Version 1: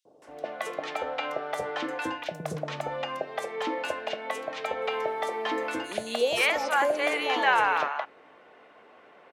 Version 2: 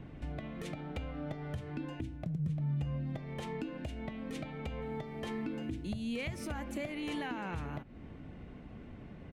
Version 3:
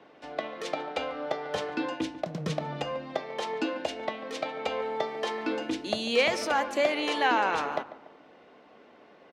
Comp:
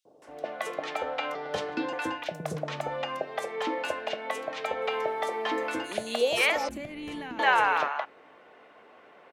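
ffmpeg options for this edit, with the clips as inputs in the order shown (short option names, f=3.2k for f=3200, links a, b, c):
-filter_complex "[0:a]asplit=3[a][b][c];[a]atrim=end=1.352[d];[2:a]atrim=start=1.348:end=1.932[e];[b]atrim=start=1.928:end=6.692[f];[1:a]atrim=start=6.688:end=7.392[g];[c]atrim=start=7.388[h];[d][e]acrossfade=d=0.004:c1=hsin:c2=hsin[i];[i][f]acrossfade=d=0.004:c1=hsin:c2=hsin[j];[j][g]acrossfade=d=0.004:c1=hsin:c2=hsin[k];[k][h]acrossfade=d=0.004:c1=hsin:c2=hsin"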